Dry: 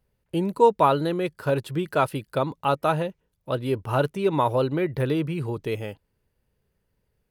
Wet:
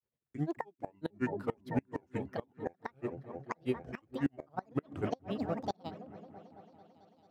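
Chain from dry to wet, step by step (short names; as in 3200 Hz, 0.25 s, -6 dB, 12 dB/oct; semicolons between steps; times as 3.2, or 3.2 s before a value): block floating point 7-bit; grains 0.118 s, grains 11/s, spray 10 ms, pitch spread up and down by 12 st; HPF 130 Hz 12 dB/oct; high shelf 3500 Hz -4 dB; repeats that get brighter 0.221 s, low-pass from 200 Hz, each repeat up 1 oct, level -6 dB; flipped gate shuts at -16 dBFS, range -24 dB; high shelf 8800 Hz -8.5 dB; upward expander 1.5:1, over -44 dBFS; gain -2.5 dB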